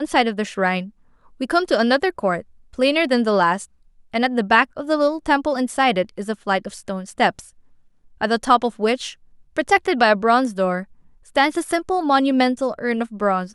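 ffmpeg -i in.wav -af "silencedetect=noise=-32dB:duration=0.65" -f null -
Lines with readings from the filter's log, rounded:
silence_start: 7.42
silence_end: 8.21 | silence_duration: 0.79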